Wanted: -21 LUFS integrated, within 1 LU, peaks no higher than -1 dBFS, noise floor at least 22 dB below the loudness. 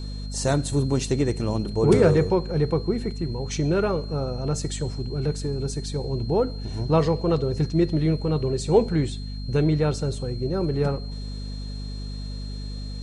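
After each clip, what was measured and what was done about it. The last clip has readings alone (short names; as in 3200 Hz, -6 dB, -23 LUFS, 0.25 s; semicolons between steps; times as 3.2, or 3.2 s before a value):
hum 50 Hz; harmonics up to 250 Hz; hum level -30 dBFS; steady tone 4200 Hz; tone level -43 dBFS; loudness -24.5 LUFS; peak -6.5 dBFS; loudness target -21.0 LUFS
-> notches 50/100/150/200/250 Hz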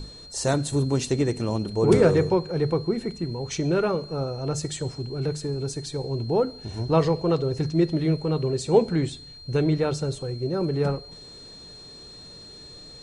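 hum none; steady tone 4200 Hz; tone level -43 dBFS
-> notch 4200 Hz, Q 30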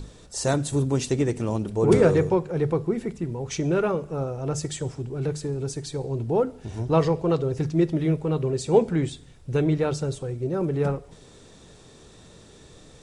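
steady tone none; loudness -25.0 LUFS; peak -5.5 dBFS; loudness target -21.0 LUFS
-> gain +4 dB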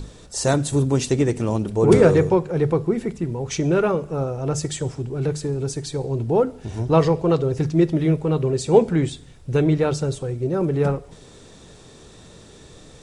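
loudness -21.0 LUFS; peak -1.5 dBFS; noise floor -46 dBFS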